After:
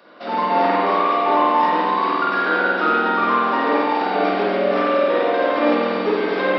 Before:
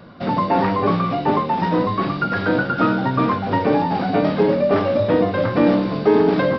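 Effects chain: HPF 290 Hz 24 dB/oct; tilt shelf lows -3 dB, about 870 Hz; spring tank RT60 2.2 s, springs 47 ms, chirp 50 ms, DRR -6.5 dB; gain -4.5 dB

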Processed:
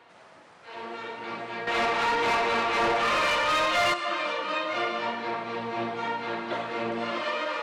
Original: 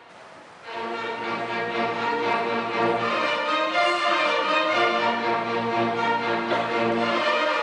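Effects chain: 1.67–3.94 overdrive pedal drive 20 dB, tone 5900 Hz, clips at -9.5 dBFS; gain -7.5 dB

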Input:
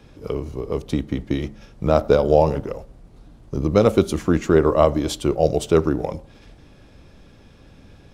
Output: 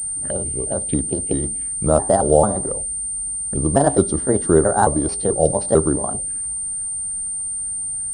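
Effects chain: trilling pitch shifter +5 st, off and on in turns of 0.221 s; envelope phaser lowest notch 380 Hz, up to 2500 Hz, full sweep at -21 dBFS; pulse-width modulation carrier 8900 Hz; gain +1.5 dB

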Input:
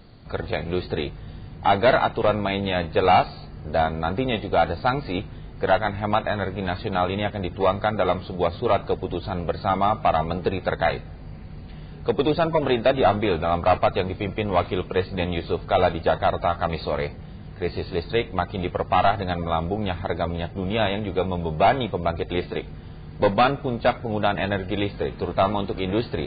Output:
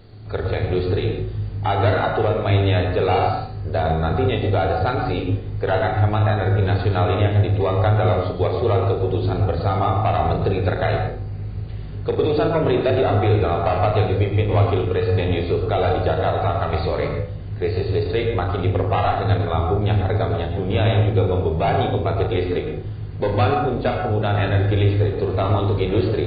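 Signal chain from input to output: thirty-one-band EQ 100 Hz +11 dB, 200 Hz -5 dB, 400 Hz +8 dB, 1000 Hz -3 dB; flutter echo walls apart 6.5 m, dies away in 0.31 s; limiter -12 dBFS, peak gain reduction 8 dB; on a send at -5 dB: low shelf 210 Hz +6.5 dB + reverb RT60 0.45 s, pre-delay 97 ms

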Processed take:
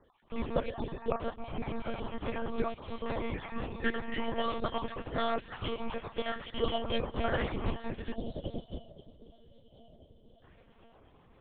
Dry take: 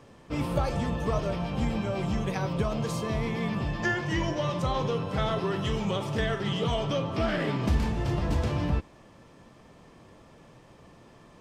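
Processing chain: random spectral dropouts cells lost 29%; HPF 150 Hz 12 dB/oct; echo with dull and thin repeats by turns 0.518 s, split 1200 Hz, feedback 80%, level -12.5 dB; spectral gain 8.15–10.43, 730–2800 Hz -22 dB; monotone LPC vocoder at 8 kHz 230 Hz; upward expander 1.5:1, over -45 dBFS

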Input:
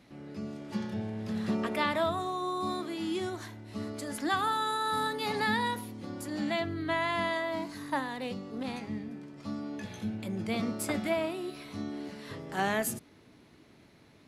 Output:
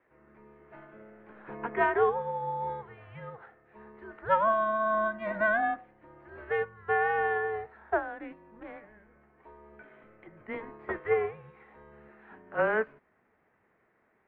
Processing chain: mistuned SSB -220 Hz 510–2300 Hz; upward expander 1.5:1, over -48 dBFS; gain +6.5 dB

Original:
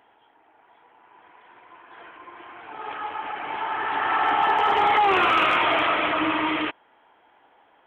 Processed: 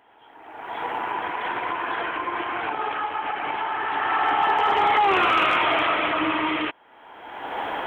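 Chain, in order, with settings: recorder AGC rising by 33 dB/s

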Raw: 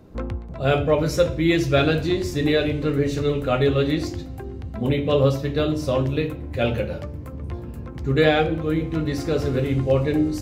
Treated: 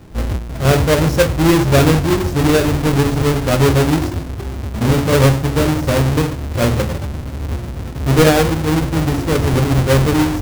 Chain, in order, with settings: half-waves squared off; low shelf 330 Hz +5 dB

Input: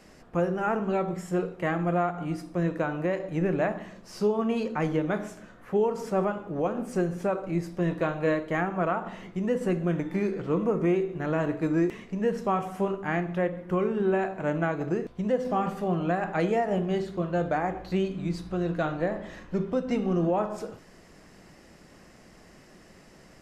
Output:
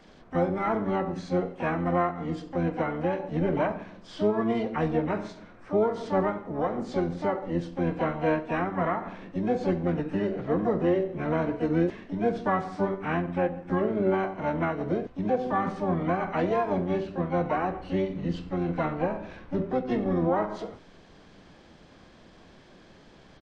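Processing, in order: nonlinear frequency compression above 1300 Hz 1.5:1; harmoniser -12 st -14 dB, +7 st -6 dB; gain -1 dB

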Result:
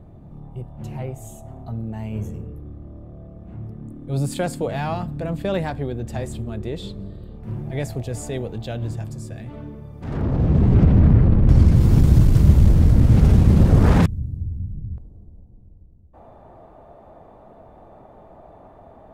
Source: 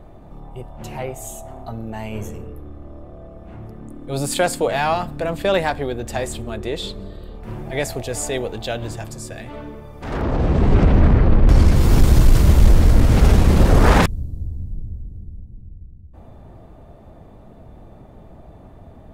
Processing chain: bell 130 Hz +14.5 dB 2.6 oct, from 14.98 s 820 Hz; gain -10 dB

